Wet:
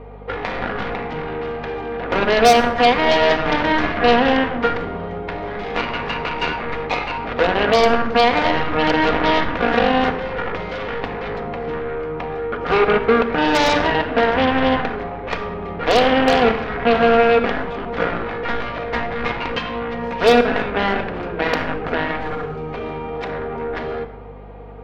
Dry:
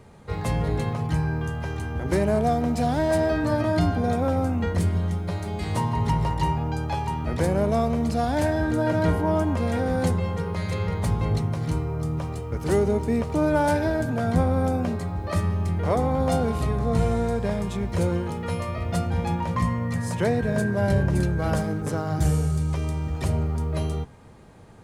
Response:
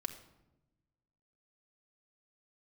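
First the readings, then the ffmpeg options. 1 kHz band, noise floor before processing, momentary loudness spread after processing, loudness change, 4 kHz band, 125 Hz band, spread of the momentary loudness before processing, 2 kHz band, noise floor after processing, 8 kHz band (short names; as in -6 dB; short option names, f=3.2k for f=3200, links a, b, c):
+10.0 dB, -33 dBFS, 13 LU, +5.5 dB, +16.0 dB, -8.5 dB, 6 LU, +13.5 dB, -29 dBFS, n/a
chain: -filter_complex "[0:a]asplit=2[a][b];[b]alimiter=limit=-19.5dB:level=0:latency=1,volume=-1.5dB[c];[a][c]amix=inputs=2:normalize=0,highpass=370,equalizer=f=460:t=q:w=4:g=8,equalizer=f=750:t=q:w=4:g=6,equalizer=f=1.7k:t=q:w=4:g=-6,lowpass=f=2.7k:w=0.5412,lowpass=f=2.7k:w=1.3066,aeval=exprs='0.355*(cos(1*acos(clip(val(0)/0.355,-1,1)))-cos(1*PI/2))+0.126*(cos(7*acos(clip(val(0)/0.355,-1,1)))-cos(7*PI/2))':c=same[d];[1:a]atrim=start_sample=2205[e];[d][e]afir=irnorm=-1:irlink=0,aeval=exprs='val(0)+0.01*(sin(2*PI*50*n/s)+sin(2*PI*2*50*n/s)/2+sin(2*PI*3*50*n/s)/3+sin(2*PI*4*50*n/s)/4+sin(2*PI*5*50*n/s)/5)':c=same,volume=2dB"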